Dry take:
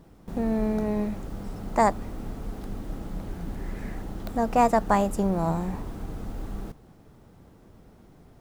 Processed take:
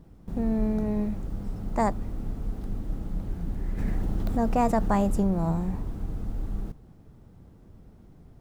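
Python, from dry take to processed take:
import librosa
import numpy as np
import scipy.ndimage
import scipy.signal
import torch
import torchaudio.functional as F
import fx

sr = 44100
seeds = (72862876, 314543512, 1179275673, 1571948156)

y = fx.low_shelf(x, sr, hz=260.0, db=11.0)
y = fx.env_flatten(y, sr, amount_pct=50, at=(3.77, 5.23), fade=0.02)
y = y * 10.0 ** (-6.5 / 20.0)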